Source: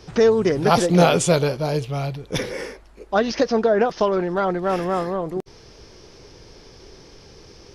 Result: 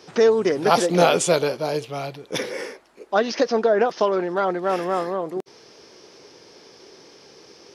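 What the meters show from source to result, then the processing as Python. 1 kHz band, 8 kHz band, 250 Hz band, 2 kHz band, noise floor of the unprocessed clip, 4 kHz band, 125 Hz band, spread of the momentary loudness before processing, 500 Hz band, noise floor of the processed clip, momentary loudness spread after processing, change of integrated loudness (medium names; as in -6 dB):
0.0 dB, 0.0 dB, -4.0 dB, 0.0 dB, -47 dBFS, 0.0 dB, -9.0 dB, 12 LU, -0.5 dB, -50 dBFS, 13 LU, -1.0 dB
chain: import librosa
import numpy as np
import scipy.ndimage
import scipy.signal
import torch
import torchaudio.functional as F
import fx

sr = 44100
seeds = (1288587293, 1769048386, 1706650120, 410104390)

y = scipy.signal.sosfilt(scipy.signal.butter(2, 260.0, 'highpass', fs=sr, output='sos'), x)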